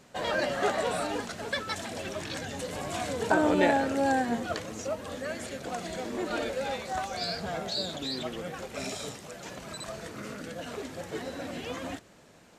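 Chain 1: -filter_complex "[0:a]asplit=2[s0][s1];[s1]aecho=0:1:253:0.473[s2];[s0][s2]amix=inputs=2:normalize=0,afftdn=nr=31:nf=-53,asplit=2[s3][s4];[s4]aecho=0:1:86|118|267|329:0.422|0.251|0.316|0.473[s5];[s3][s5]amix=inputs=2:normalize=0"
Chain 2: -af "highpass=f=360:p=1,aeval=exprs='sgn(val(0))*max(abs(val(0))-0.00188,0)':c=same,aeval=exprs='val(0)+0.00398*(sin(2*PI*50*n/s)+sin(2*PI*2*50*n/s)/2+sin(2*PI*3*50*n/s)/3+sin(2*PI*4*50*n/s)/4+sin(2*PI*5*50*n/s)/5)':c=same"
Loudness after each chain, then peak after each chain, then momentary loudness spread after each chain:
-29.5 LUFS, -34.0 LUFS; -8.5 dBFS, -10.0 dBFS; 13 LU, 14 LU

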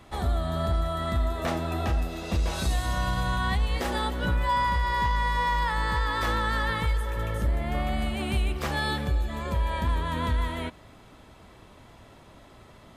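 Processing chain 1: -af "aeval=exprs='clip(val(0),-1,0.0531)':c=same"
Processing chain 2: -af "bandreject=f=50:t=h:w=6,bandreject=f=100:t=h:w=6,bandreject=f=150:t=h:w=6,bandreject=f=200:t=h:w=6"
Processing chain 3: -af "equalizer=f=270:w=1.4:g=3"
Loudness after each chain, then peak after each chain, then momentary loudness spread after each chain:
-29.0 LUFS, -28.5 LUFS, -27.5 LUFS; -17.0 dBFS, -15.5 dBFS, -16.0 dBFS; 4 LU, 5 LU, 4 LU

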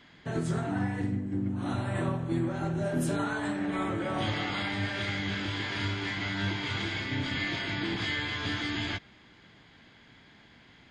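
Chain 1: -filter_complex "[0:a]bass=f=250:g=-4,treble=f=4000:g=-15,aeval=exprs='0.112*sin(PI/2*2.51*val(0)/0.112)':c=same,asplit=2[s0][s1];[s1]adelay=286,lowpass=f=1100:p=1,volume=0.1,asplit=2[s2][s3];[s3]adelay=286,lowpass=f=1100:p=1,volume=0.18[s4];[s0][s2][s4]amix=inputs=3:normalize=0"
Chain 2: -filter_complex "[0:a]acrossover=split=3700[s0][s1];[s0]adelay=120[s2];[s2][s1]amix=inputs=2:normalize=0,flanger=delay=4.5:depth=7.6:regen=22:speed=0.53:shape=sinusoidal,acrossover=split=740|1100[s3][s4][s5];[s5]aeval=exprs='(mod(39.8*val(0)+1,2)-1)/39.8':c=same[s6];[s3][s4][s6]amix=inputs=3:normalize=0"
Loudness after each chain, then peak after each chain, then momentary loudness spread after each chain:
-23.5 LUFS, -35.5 LUFS; -18.0 dBFS, -21.0 dBFS; 2 LU, 3 LU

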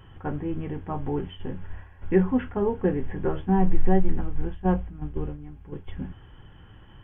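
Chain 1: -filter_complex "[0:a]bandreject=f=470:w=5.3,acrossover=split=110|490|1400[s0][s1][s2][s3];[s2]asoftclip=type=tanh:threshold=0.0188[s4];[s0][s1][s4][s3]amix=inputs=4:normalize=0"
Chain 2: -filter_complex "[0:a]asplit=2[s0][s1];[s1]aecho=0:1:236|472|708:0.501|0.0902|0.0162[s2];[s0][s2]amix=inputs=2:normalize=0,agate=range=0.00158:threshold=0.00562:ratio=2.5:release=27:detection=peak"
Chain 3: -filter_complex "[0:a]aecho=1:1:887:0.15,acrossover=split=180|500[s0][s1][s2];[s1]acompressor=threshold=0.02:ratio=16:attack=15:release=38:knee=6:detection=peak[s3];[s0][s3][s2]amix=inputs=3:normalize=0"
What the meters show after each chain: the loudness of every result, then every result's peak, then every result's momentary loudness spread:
-29.0 LUFS, -27.0 LUFS, -31.0 LUFS; -7.5 dBFS, -5.0 dBFS, -7.5 dBFS; 16 LU, 16 LU, 16 LU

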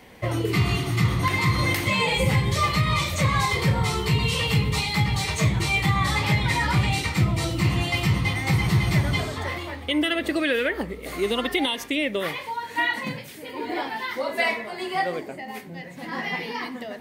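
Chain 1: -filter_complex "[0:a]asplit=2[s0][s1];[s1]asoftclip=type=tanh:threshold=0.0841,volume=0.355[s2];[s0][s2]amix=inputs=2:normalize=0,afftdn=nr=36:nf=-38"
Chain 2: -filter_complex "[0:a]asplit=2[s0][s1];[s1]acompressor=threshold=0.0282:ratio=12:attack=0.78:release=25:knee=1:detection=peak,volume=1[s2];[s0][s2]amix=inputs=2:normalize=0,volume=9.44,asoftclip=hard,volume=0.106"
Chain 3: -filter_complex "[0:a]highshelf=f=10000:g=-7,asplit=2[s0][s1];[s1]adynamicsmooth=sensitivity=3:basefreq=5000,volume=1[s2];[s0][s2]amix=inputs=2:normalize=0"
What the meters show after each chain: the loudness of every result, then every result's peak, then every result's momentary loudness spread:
-22.0 LUFS, -24.0 LUFS, -18.5 LUFS; -9.0 dBFS, -19.5 dBFS, -4.0 dBFS; 9 LU, 5 LU, 10 LU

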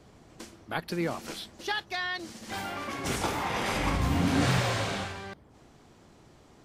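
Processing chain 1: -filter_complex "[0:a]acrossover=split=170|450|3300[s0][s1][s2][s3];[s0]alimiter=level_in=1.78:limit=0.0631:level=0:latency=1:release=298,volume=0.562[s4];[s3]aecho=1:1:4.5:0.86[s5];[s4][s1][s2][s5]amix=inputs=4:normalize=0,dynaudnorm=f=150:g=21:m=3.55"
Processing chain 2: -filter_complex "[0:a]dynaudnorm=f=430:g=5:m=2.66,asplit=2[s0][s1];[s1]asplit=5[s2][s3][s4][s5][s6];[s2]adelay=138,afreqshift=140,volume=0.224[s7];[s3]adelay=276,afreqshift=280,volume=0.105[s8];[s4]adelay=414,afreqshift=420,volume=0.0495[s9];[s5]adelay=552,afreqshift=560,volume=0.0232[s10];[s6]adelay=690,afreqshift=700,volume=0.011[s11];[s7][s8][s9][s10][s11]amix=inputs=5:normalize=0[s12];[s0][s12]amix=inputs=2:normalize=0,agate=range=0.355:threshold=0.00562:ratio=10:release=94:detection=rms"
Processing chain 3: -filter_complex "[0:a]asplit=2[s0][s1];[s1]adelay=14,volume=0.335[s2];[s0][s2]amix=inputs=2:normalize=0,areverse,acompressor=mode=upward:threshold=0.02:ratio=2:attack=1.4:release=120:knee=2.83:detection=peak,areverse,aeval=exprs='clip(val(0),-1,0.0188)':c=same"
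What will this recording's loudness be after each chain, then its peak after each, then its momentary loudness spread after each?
-21.0 LUFS, -22.0 LUFS, -33.0 LUFS; -4.5 dBFS, -6.0 dBFS, -15.0 dBFS; 16 LU, 15 LU, 20 LU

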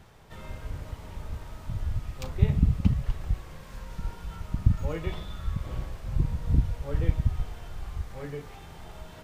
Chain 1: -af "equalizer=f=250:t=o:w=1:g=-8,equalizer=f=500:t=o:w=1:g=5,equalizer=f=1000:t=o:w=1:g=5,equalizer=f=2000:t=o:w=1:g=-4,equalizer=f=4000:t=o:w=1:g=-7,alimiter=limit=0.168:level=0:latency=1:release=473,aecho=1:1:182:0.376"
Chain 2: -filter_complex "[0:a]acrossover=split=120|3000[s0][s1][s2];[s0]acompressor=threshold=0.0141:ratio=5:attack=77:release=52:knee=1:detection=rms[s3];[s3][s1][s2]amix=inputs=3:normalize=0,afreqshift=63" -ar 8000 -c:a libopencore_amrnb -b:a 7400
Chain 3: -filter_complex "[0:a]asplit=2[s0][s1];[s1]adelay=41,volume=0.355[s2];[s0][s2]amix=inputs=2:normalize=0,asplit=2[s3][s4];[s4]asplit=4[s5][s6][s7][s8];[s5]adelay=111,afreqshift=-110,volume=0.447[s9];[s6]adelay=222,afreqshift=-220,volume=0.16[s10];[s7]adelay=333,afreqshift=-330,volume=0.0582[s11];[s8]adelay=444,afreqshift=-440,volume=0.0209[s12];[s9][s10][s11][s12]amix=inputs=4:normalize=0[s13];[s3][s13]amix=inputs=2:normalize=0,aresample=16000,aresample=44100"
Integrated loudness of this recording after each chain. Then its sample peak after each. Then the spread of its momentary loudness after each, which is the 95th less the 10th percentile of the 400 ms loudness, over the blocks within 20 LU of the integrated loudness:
-34.5 LUFS, -35.5 LUFS, -30.0 LUFS; -14.5 dBFS, -13.0 dBFS, -6.5 dBFS; 12 LU, 14 LU, 16 LU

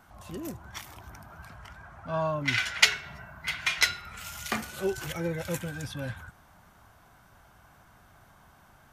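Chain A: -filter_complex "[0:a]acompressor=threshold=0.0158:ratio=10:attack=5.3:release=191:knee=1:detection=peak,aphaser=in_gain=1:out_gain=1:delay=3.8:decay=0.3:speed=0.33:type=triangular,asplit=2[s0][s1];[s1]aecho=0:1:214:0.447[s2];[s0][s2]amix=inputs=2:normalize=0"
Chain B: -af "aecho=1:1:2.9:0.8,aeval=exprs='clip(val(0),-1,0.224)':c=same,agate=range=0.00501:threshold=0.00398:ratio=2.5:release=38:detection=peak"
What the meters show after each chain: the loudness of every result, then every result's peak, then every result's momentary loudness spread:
-40.0 LUFS, -27.5 LUFS; -19.5 dBFS, -2.0 dBFS; 19 LU, 23 LU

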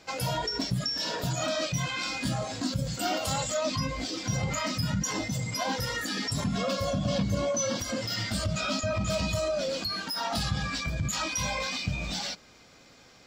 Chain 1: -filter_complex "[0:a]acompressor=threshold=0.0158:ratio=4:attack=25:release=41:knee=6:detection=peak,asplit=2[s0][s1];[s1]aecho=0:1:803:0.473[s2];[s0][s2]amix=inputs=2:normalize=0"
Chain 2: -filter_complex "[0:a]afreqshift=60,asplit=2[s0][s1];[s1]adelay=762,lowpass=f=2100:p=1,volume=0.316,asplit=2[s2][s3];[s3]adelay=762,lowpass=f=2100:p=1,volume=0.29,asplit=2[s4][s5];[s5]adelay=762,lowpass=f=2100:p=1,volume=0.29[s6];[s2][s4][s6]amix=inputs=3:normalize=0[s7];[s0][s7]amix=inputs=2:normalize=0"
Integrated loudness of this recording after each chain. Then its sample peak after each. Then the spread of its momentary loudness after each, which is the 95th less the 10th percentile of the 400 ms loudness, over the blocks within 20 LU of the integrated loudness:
-33.5 LUFS, -29.5 LUFS; -19.0 dBFS, -16.0 dBFS; 1 LU, 3 LU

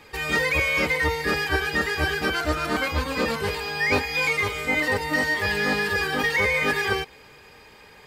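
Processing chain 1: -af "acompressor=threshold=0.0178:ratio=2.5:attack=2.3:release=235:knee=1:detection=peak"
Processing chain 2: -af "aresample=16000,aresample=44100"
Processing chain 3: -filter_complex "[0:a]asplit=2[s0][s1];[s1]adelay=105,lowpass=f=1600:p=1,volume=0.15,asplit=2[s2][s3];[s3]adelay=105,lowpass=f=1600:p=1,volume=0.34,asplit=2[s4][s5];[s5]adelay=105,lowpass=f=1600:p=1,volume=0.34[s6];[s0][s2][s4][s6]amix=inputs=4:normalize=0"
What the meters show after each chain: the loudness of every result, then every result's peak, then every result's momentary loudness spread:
-33.5 LUFS, -23.0 LUFS, -23.0 LUFS; -22.5 dBFS, -11.0 dBFS, -11.0 dBFS; 5 LU, 5 LU, 5 LU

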